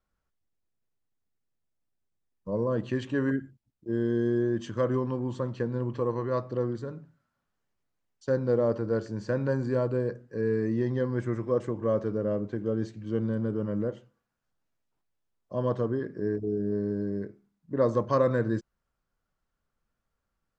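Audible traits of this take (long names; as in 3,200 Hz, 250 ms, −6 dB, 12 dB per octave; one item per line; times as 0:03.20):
background noise floor −83 dBFS
spectral slope −6.5 dB per octave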